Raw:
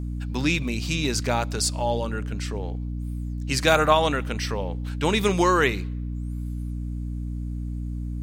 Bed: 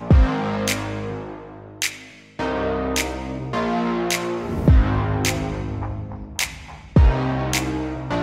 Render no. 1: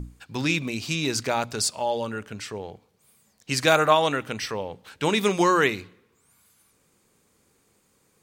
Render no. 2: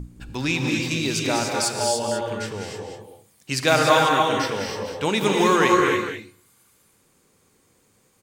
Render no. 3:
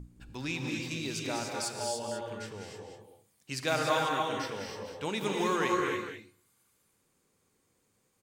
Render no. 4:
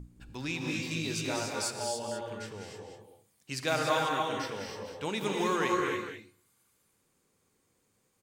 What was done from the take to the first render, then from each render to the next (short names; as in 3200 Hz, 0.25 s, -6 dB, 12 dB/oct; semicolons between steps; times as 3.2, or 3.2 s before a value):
notches 60/120/180/240/300 Hz
on a send: echo 0.199 s -8 dB; on the sum: non-linear reverb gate 0.32 s rising, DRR 1 dB
gain -11.5 dB
0.59–1.71 doubler 19 ms -3 dB